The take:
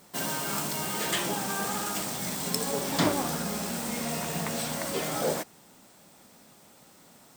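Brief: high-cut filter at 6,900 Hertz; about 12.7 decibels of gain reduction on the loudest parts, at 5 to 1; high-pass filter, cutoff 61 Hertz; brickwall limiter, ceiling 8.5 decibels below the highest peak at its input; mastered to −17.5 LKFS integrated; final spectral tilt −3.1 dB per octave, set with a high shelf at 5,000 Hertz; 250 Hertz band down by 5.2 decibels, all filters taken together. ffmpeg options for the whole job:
ffmpeg -i in.wav -af "highpass=61,lowpass=6900,equalizer=frequency=250:width_type=o:gain=-7,highshelf=frequency=5000:gain=-3.5,acompressor=threshold=-38dB:ratio=5,volume=24dB,alimiter=limit=-8.5dB:level=0:latency=1" out.wav

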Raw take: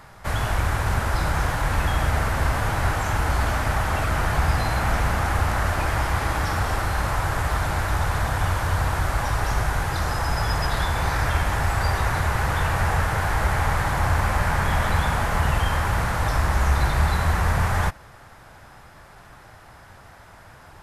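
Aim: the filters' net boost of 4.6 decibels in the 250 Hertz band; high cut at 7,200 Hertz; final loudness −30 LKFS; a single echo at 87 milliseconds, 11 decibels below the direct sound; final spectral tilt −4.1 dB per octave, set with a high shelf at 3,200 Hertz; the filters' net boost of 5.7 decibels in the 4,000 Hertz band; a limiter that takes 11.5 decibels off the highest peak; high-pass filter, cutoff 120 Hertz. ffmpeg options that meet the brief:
ffmpeg -i in.wav -af "highpass=120,lowpass=7200,equalizer=frequency=250:width_type=o:gain=7.5,highshelf=frequency=3200:gain=5,equalizer=frequency=4000:width_type=o:gain=4,alimiter=limit=-22dB:level=0:latency=1,aecho=1:1:87:0.282" out.wav

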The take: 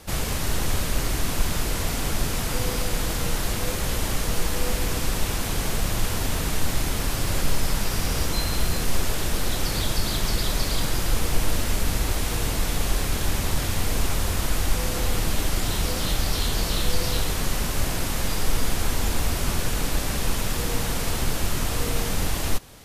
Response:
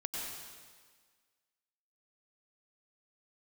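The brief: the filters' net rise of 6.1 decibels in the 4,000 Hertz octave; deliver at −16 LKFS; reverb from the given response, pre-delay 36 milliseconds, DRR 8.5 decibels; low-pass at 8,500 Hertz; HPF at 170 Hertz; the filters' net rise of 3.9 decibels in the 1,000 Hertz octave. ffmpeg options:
-filter_complex "[0:a]highpass=170,lowpass=8500,equalizer=frequency=1000:width_type=o:gain=4.5,equalizer=frequency=4000:width_type=o:gain=7.5,asplit=2[link_01][link_02];[1:a]atrim=start_sample=2205,adelay=36[link_03];[link_02][link_03]afir=irnorm=-1:irlink=0,volume=-10.5dB[link_04];[link_01][link_04]amix=inputs=2:normalize=0,volume=8.5dB"

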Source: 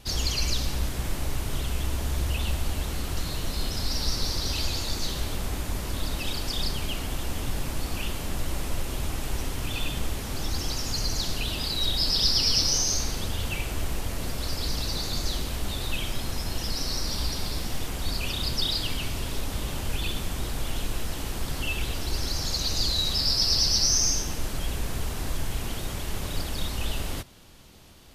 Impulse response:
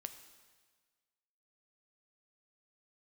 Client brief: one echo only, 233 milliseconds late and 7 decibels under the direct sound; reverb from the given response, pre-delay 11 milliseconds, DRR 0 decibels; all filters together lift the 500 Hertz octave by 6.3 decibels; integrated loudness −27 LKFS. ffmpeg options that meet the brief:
-filter_complex "[0:a]equalizer=frequency=500:width_type=o:gain=8,aecho=1:1:233:0.447,asplit=2[link_01][link_02];[1:a]atrim=start_sample=2205,adelay=11[link_03];[link_02][link_03]afir=irnorm=-1:irlink=0,volume=3.5dB[link_04];[link_01][link_04]amix=inputs=2:normalize=0,volume=-2.5dB"

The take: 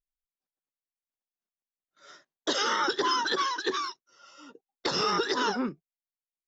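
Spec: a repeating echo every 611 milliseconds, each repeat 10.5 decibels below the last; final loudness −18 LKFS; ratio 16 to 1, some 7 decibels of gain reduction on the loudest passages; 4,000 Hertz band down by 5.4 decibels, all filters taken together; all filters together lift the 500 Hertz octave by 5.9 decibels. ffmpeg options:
ffmpeg -i in.wav -af "equalizer=frequency=500:width_type=o:gain=7.5,equalizer=frequency=4000:width_type=o:gain=-7.5,acompressor=threshold=-26dB:ratio=16,aecho=1:1:611|1222|1833:0.299|0.0896|0.0269,volume=14.5dB" out.wav

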